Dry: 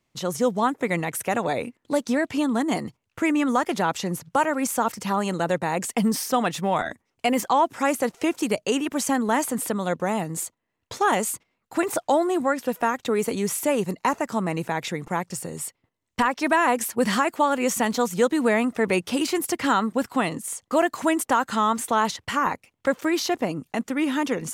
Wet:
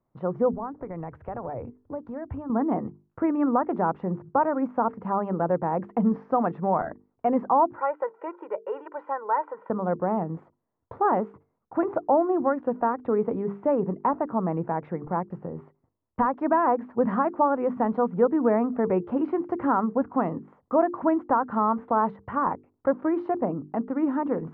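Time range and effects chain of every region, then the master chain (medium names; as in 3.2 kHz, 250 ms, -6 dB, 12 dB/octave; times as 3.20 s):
0.53–2.50 s: compression 4:1, threshold -29 dBFS + resonant low shelf 130 Hz +13 dB, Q 1.5 + three bands expanded up and down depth 40%
7.76–9.70 s: band-pass 770–2500 Hz + comb 2.1 ms, depth 81%
whole clip: low-pass 1.2 kHz 24 dB/octave; hum notches 50/100/150/200/250/300/350/400/450 Hz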